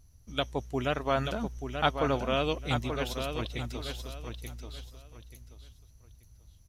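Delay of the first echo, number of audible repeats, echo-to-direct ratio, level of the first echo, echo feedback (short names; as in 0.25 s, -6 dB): 0.883 s, 3, -6.5 dB, -7.0 dB, 25%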